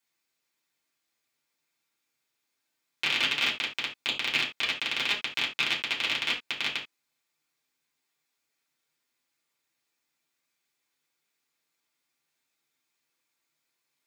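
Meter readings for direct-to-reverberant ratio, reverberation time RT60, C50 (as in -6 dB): -4.5 dB, no single decay rate, 10.0 dB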